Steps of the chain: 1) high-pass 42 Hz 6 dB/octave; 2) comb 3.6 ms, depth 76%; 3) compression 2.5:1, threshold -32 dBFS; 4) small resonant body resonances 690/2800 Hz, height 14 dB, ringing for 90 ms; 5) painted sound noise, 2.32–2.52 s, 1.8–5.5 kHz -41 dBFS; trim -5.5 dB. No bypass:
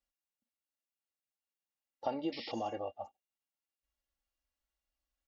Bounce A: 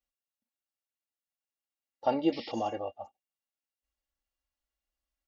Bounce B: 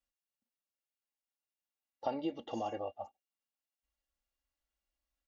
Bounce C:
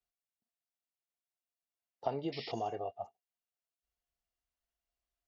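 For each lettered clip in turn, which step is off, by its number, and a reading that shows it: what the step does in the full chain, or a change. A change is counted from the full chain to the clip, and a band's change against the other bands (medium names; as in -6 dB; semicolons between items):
3, mean gain reduction 5.0 dB; 5, 4 kHz band -6.0 dB; 2, 125 Hz band +7.5 dB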